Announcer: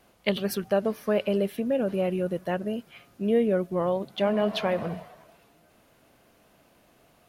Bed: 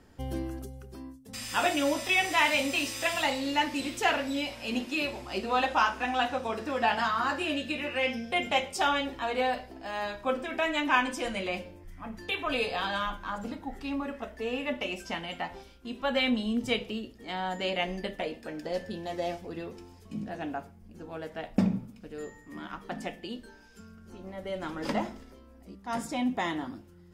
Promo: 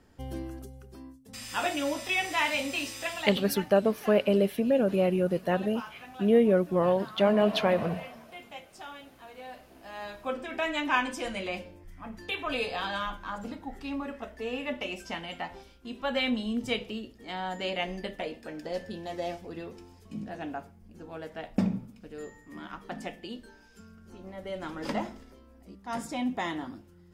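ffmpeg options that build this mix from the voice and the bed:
ffmpeg -i stem1.wav -i stem2.wav -filter_complex "[0:a]adelay=3000,volume=1.5dB[link_01];[1:a]volume=13dB,afade=type=out:start_time=2.86:duration=0.84:silence=0.188365,afade=type=in:start_time=9.42:duration=1.21:silence=0.158489[link_02];[link_01][link_02]amix=inputs=2:normalize=0" out.wav

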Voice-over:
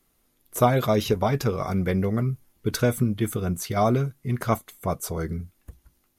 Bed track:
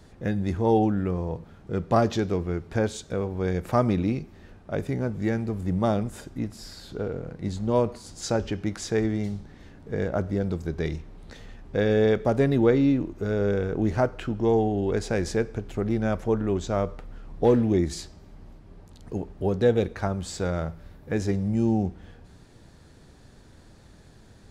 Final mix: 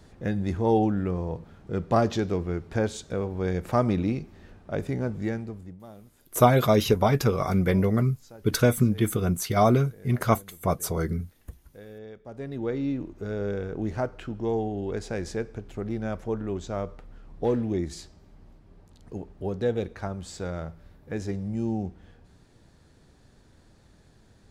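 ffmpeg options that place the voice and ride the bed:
ffmpeg -i stem1.wav -i stem2.wav -filter_complex "[0:a]adelay=5800,volume=1.5dB[link_01];[1:a]volume=16dB,afade=type=out:start_time=5.11:duration=0.66:silence=0.0841395,afade=type=in:start_time=12.23:duration=0.84:silence=0.141254[link_02];[link_01][link_02]amix=inputs=2:normalize=0" out.wav

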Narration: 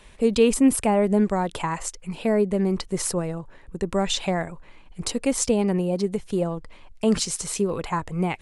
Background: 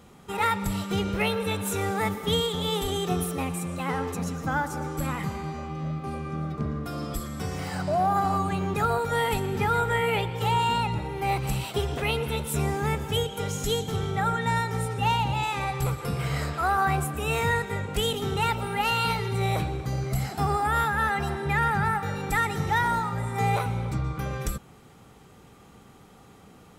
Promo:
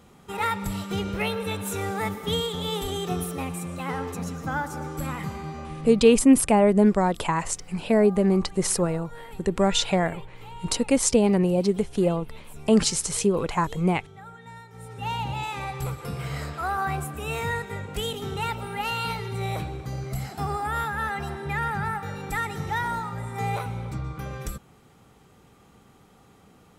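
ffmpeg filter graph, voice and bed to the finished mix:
ffmpeg -i stem1.wav -i stem2.wav -filter_complex "[0:a]adelay=5650,volume=2dB[link_01];[1:a]volume=13.5dB,afade=type=out:start_time=5.68:duration=0.58:silence=0.141254,afade=type=in:start_time=14.73:duration=0.53:silence=0.177828[link_02];[link_01][link_02]amix=inputs=2:normalize=0" out.wav

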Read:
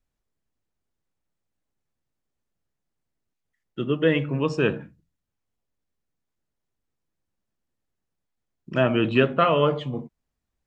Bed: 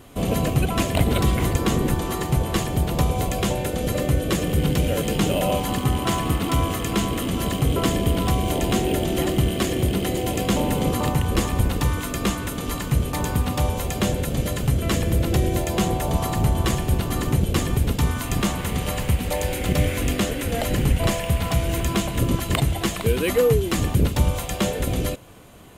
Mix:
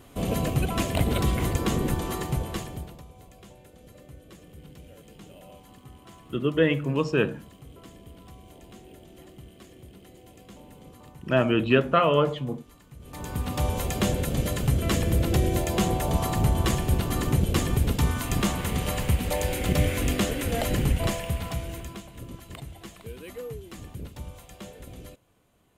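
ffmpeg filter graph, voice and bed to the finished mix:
ffmpeg -i stem1.wav -i stem2.wav -filter_complex "[0:a]adelay=2550,volume=-1dB[link_01];[1:a]volume=19.5dB,afade=type=out:start_time=2.14:duration=0.87:silence=0.0794328,afade=type=in:start_time=12.99:duration=0.79:silence=0.0630957,afade=type=out:start_time=20.64:duration=1.38:silence=0.141254[link_02];[link_01][link_02]amix=inputs=2:normalize=0" out.wav

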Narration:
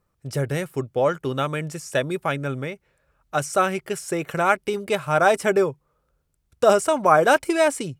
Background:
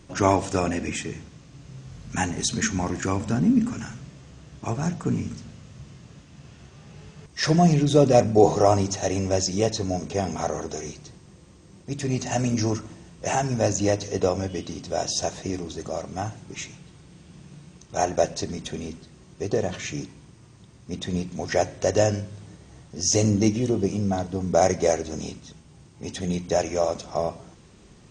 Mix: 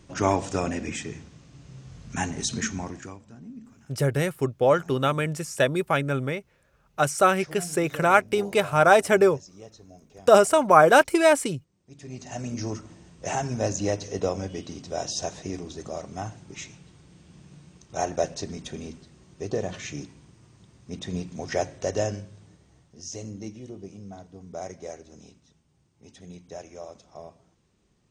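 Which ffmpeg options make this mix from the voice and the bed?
ffmpeg -i stem1.wav -i stem2.wav -filter_complex "[0:a]adelay=3650,volume=1dB[link_01];[1:a]volume=16dB,afade=type=out:start_time=2.56:duration=0.64:silence=0.1,afade=type=in:start_time=11.79:duration=1.31:silence=0.112202,afade=type=out:start_time=21.56:duration=1.62:silence=0.223872[link_02];[link_01][link_02]amix=inputs=2:normalize=0" out.wav

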